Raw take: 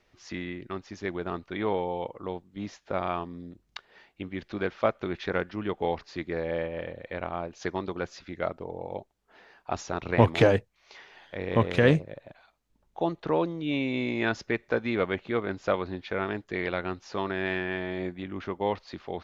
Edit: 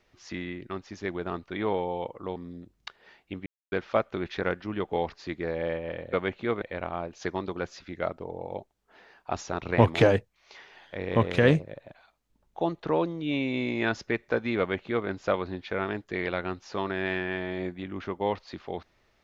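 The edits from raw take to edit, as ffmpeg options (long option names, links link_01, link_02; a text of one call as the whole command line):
ffmpeg -i in.wav -filter_complex "[0:a]asplit=6[link_01][link_02][link_03][link_04][link_05][link_06];[link_01]atrim=end=2.362[link_07];[link_02]atrim=start=3.248:end=4.35,asetpts=PTS-STARTPTS,afade=type=out:start_time=1.098:duration=0.004:curve=hsin[link_08];[link_03]atrim=start=4.35:end=4.61,asetpts=PTS-STARTPTS,volume=0[link_09];[link_04]atrim=start=4.61:end=7.022,asetpts=PTS-STARTPTS,afade=type=in:duration=0.004:curve=hsin[link_10];[link_05]atrim=start=14.988:end=15.482[link_11];[link_06]atrim=start=7.018[link_12];[link_08][link_09][link_10]concat=n=3:v=0:a=1[link_13];[link_07][link_13]acrossfade=duration=0.004:curve1=hsin:curve2=hsin[link_14];[link_14][link_11]acrossfade=duration=0.004:curve1=hsin:curve2=hsin[link_15];[link_15][link_12]acrossfade=duration=0.004:curve1=hsin:curve2=hsin" out.wav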